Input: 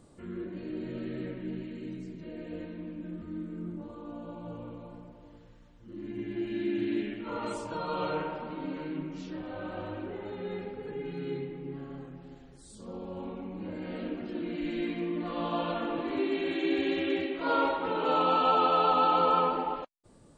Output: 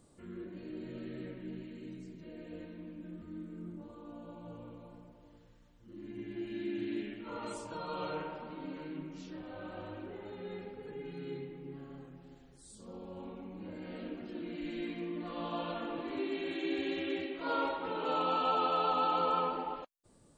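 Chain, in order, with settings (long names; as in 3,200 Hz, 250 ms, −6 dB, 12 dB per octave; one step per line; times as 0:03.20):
high-shelf EQ 5,500 Hz +7.5 dB
level −6.5 dB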